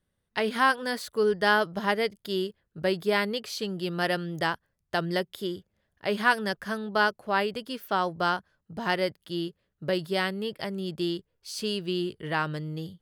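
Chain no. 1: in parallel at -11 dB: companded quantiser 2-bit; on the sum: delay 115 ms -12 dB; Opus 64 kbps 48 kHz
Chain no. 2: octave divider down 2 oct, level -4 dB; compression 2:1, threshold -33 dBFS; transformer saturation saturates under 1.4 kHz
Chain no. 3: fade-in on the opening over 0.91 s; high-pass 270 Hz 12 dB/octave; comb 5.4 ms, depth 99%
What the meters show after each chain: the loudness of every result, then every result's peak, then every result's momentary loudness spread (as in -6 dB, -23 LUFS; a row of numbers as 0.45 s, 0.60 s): -26.0 LUFS, -38.0 LUFS, -26.0 LUFS; -4.0 dBFS, -18.5 dBFS, -6.0 dBFS; 11 LU, 7 LU, 11 LU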